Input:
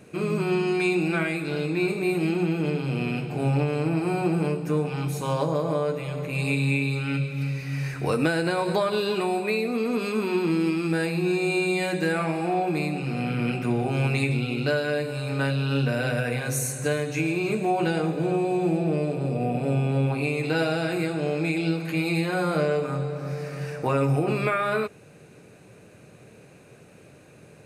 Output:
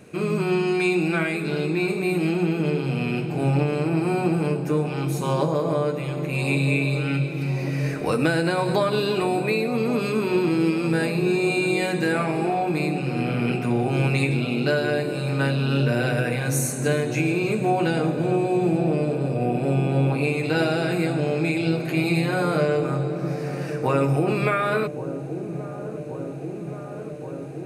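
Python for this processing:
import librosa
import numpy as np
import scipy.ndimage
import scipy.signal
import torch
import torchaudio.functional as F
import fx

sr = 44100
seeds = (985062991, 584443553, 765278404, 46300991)

y = fx.echo_wet_lowpass(x, sr, ms=1126, feedback_pct=80, hz=700.0, wet_db=-10.5)
y = y * 10.0 ** (2.0 / 20.0)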